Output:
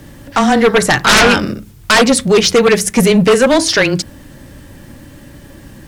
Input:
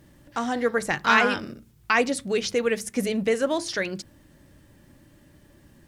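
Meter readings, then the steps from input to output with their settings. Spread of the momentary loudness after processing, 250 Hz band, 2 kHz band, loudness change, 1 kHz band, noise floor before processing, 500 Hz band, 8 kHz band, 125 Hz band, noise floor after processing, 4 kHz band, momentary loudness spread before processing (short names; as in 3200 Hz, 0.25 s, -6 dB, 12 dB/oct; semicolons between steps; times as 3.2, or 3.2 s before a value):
11 LU, +15.0 dB, +11.5 dB, +13.5 dB, +11.5 dB, -56 dBFS, +14.0 dB, +18.0 dB, +20.0 dB, -39 dBFS, +17.5 dB, 12 LU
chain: frequency shift -16 Hz; sine folder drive 14 dB, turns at -4.5 dBFS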